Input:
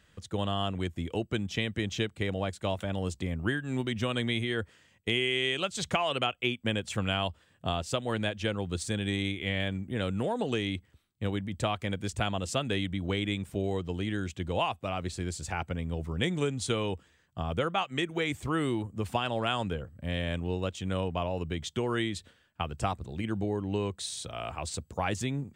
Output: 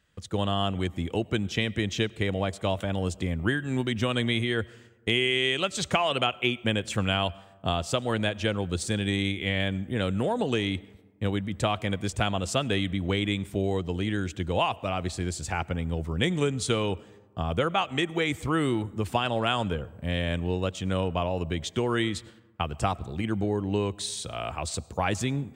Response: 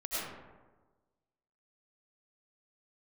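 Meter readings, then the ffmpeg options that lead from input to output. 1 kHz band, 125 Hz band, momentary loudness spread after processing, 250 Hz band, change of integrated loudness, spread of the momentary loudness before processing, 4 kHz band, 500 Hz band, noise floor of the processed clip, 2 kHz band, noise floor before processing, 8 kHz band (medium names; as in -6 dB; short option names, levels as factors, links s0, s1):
+4.0 dB, +4.0 dB, 6 LU, +4.0 dB, +4.0 dB, 6 LU, +4.0 dB, +4.0 dB, -53 dBFS, +4.0 dB, -66 dBFS, +4.0 dB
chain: -filter_complex "[0:a]agate=range=0.316:threshold=0.00112:ratio=16:detection=peak,asplit=2[s0][s1];[1:a]atrim=start_sample=2205[s2];[s1][s2]afir=irnorm=-1:irlink=0,volume=0.0473[s3];[s0][s3]amix=inputs=2:normalize=0,volume=1.5"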